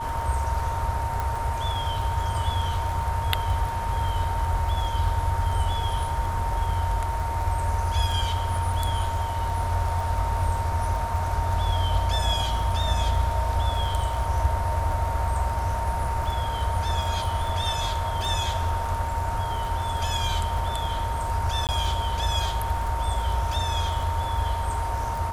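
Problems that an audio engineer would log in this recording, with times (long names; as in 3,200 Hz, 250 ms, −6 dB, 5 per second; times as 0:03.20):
surface crackle 17 per second −30 dBFS
whistle 920 Hz −29 dBFS
0:01.20: click
0:21.67–0:21.69: drop-out 18 ms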